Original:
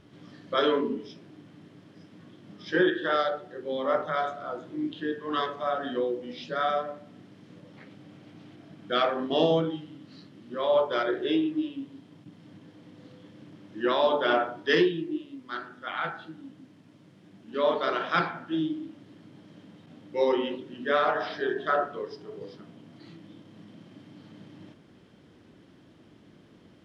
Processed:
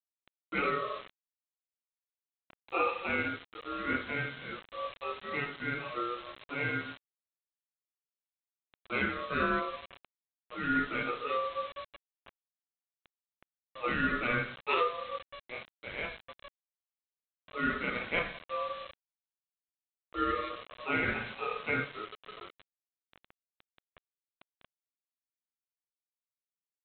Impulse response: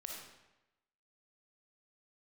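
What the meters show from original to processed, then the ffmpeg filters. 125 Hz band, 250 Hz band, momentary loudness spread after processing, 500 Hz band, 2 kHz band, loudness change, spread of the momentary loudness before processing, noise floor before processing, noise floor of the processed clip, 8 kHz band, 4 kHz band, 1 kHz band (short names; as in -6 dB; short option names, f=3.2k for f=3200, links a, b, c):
-3.0 dB, -8.5 dB, 14 LU, -11.0 dB, 0.0 dB, -6.0 dB, 16 LU, -56 dBFS, under -85 dBFS, n/a, -8.5 dB, -5.0 dB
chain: -af "afftdn=nr=15:nf=-39,aeval=exprs='val(0)*sin(2*PI*850*n/s)':c=same,aresample=8000,acrusher=bits=6:mix=0:aa=0.000001,aresample=44100,adynamicequalizer=threshold=0.01:dfrequency=1500:dqfactor=0.7:tfrequency=1500:tqfactor=0.7:attack=5:release=100:ratio=0.375:range=2:mode=boostabove:tftype=highshelf,volume=-5dB"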